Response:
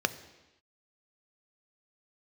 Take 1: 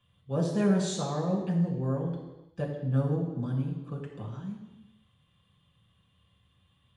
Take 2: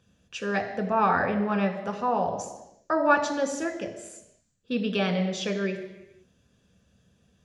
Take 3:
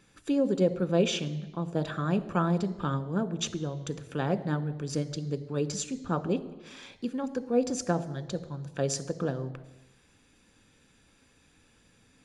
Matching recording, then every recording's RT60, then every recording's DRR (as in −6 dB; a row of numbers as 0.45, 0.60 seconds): 3; non-exponential decay, non-exponential decay, non-exponential decay; −3.0, 3.5, 11.0 decibels